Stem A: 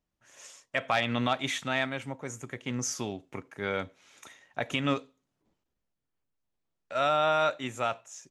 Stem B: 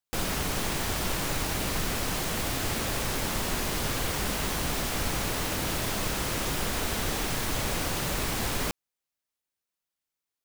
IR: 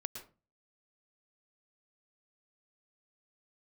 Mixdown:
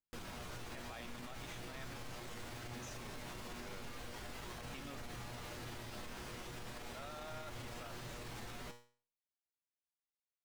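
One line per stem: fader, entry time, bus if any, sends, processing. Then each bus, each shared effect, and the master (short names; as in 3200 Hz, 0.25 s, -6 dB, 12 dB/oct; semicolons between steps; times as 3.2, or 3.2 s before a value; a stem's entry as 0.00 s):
-19.5 dB, 0.00 s, no send, dry
-1.0 dB, 0.00 s, no send, high shelf 7200 Hz -10.5 dB; flange 0.2 Hz, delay 0.1 ms, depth 9.3 ms, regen -67%; resonator 120 Hz, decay 0.41 s, harmonics all, mix 80%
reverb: off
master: limiter -38 dBFS, peak gain reduction 8.5 dB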